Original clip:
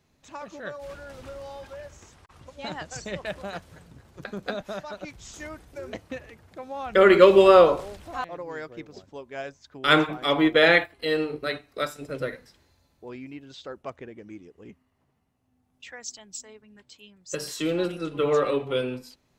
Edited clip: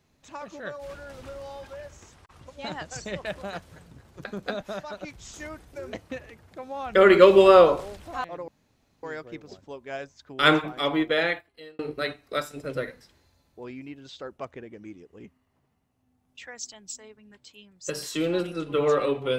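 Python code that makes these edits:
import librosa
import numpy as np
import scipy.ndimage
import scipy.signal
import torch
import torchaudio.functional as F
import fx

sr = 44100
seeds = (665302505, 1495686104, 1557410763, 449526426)

y = fx.edit(x, sr, fx.insert_room_tone(at_s=8.48, length_s=0.55),
    fx.fade_out_span(start_s=9.96, length_s=1.28), tone=tone)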